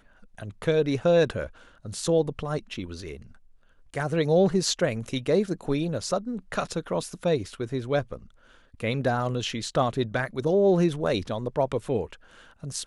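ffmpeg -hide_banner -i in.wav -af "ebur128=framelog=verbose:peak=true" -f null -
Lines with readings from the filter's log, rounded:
Integrated loudness:
  I:         -26.4 LUFS
  Threshold: -37.3 LUFS
Loudness range:
  LRA:         3.7 LU
  Threshold: -47.4 LUFS
  LRA low:   -29.7 LUFS
  LRA high:  -26.0 LUFS
True peak:
  Peak:       -9.7 dBFS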